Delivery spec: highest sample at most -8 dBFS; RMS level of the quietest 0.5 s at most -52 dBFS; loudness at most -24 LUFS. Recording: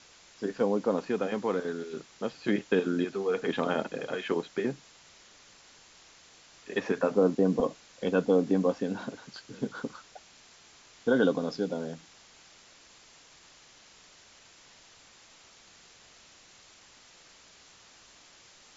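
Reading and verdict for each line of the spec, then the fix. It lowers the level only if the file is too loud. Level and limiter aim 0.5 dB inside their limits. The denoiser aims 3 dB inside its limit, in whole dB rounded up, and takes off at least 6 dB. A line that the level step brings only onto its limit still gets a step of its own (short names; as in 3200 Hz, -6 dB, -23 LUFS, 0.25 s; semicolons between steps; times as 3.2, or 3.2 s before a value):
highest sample -12.0 dBFS: OK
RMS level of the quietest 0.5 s -56 dBFS: OK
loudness -30.0 LUFS: OK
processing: none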